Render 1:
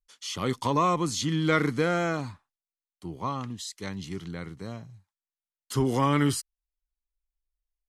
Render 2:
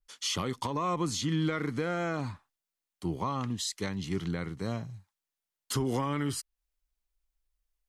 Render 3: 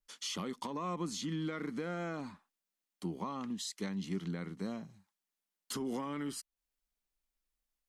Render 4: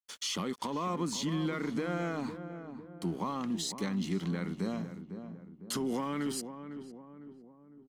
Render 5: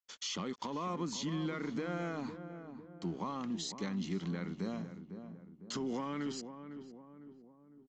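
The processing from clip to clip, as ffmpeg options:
ffmpeg -i in.wav -af "acompressor=threshold=-26dB:ratio=6,alimiter=level_in=1.5dB:limit=-24dB:level=0:latency=1:release=402,volume=-1.5dB,adynamicequalizer=threshold=0.00224:dfrequency=3500:dqfactor=0.7:tfrequency=3500:tqfactor=0.7:attack=5:release=100:ratio=0.375:range=2:mode=cutabove:tftype=highshelf,volume=5dB" out.wav
ffmpeg -i in.wav -af "acompressor=threshold=-46dB:ratio=1.5,aeval=exprs='0.0501*(cos(1*acos(clip(val(0)/0.0501,-1,1)))-cos(1*PI/2))+0.000447*(cos(6*acos(clip(val(0)/0.0501,-1,1)))-cos(6*PI/2))':channel_layout=same,lowshelf=frequency=150:width_type=q:width=3:gain=-8,volume=-1.5dB" out.wav
ffmpeg -i in.wav -filter_complex "[0:a]asplit=2[link_01][link_02];[link_02]alimiter=level_in=11.5dB:limit=-24dB:level=0:latency=1:release=22,volume=-11.5dB,volume=-1.5dB[link_03];[link_01][link_03]amix=inputs=2:normalize=0,aeval=exprs='sgn(val(0))*max(abs(val(0))-0.00126,0)':channel_layout=same,asplit=2[link_04][link_05];[link_05]adelay=504,lowpass=frequency=1100:poles=1,volume=-9dB,asplit=2[link_06][link_07];[link_07]adelay=504,lowpass=frequency=1100:poles=1,volume=0.51,asplit=2[link_08][link_09];[link_09]adelay=504,lowpass=frequency=1100:poles=1,volume=0.51,asplit=2[link_10][link_11];[link_11]adelay=504,lowpass=frequency=1100:poles=1,volume=0.51,asplit=2[link_12][link_13];[link_13]adelay=504,lowpass=frequency=1100:poles=1,volume=0.51,asplit=2[link_14][link_15];[link_15]adelay=504,lowpass=frequency=1100:poles=1,volume=0.51[link_16];[link_04][link_06][link_08][link_10][link_12][link_14][link_16]amix=inputs=7:normalize=0,volume=1.5dB" out.wav
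ffmpeg -i in.wav -af "aresample=16000,aresample=44100,volume=-4dB" out.wav

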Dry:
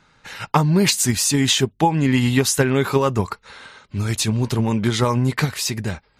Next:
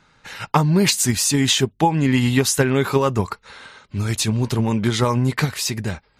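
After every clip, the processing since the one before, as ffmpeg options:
ffmpeg -i in.wav -af anull out.wav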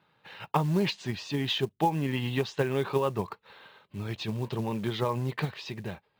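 ffmpeg -i in.wav -af "highpass=140,equalizer=frequency=250:width_type=q:width=4:gain=-8,equalizer=frequency=1400:width_type=q:width=4:gain=-7,equalizer=frequency=2100:width_type=q:width=4:gain=-6,lowpass=frequency=3600:width=0.5412,lowpass=frequency=3600:width=1.3066,acrusher=bits=6:mode=log:mix=0:aa=0.000001,volume=-7.5dB" out.wav

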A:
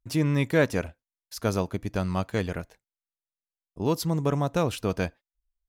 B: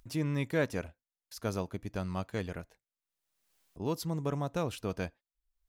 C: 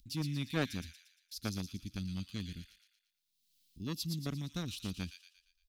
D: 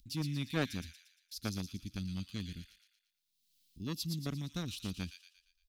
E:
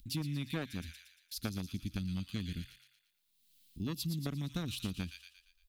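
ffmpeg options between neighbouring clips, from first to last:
ffmpeg -i in.wav -af "acompressor=mode=upward:threshold=-40dB:ratio=2.5,volume=-8dB" out.wav
ffmpeg -i in.wav -filter_complex "[0:a]equalizer=frequency=125:width_type=o:width=1:gain=-5,equalizer=frequency=250:width_type=o:width=1:gain=4,equalizer=frequency=500:width_type=o:width=1:gain=-6,equalizer=frequency=1000:width_type=o:width=1:gain=-7,equalizer=frequency=2000:width_type=o:width=1:gain=-5,equalizer=frequency=4000:width_type=o:width=1:gain=7,equalizer=frequency=8000:width_type=o:width=1:gain=-4,acrossover=split=280|2200[link_01][link_02][link_03];[link_02]acrusher=bits=4:mix=0:aa=0.5[link_04];[link_03]aecho=1:1:116|232|348|464|580|696:0.596|0.274|0.126|0.058|0.0267|0.0123[link_05];[link_01][link_04][link_05]amix=inputs=3:normalize=0" out.wav
ffmpeg -i in.wav -af anull out.wav
ffmpeg -i in.wav -af "equalizer=frequency=5600:width=1.6:gain=-6.5,acompressor=threshold=-40dB:ratio=10,bandreject=frequency=64.77:width_type=h:width=4,bandreject=frequency=129.54:width_type=h:width=4,volume=7dB" out.wav

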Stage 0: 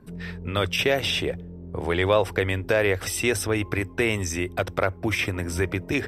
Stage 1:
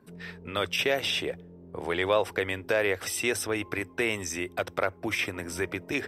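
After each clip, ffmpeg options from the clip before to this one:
ffmpeg -i in.wav -af "highpass=frequency=300:poles=1,volume=-3dB" out.wav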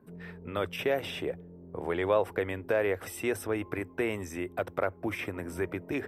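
ffmpeg -i in.wav -af "equalizer=frequency=5100:width_type=o:width=2.3:gain=-15" out.wav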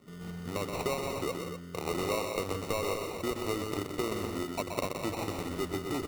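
ffmpeg -i in.wav -filter_complex "[0:a]acompressor=threshold=-29dB:ratio=6,acrusher=samples=27:mix=1:aa=0.000001,asplit=2[link_01][link_02];[link_02]aecho=0:1:125.4|172|247.8:0.501|0.355|0.355[link_03];[link_01][link_03]amix=inputs=2:normalize=0" out.wav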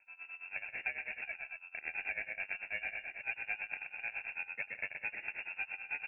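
ffmpeg -i in.wav -af "acrusher=bits=6:mode=log:mix=0:aa=0.000001,tremolo=f=9.1:d=0.88,lowpass=frequency=2400:width_type=q:width=0.5098,lowpass=frequency=2400:width_type=q:width=0.6013,lowpass=frequency=2400:width_type=q:width=0.9,lowpass=frequency=2400:width_type=q:width=2.563,afreqshift=-2800,volume=-4dB" out.wav

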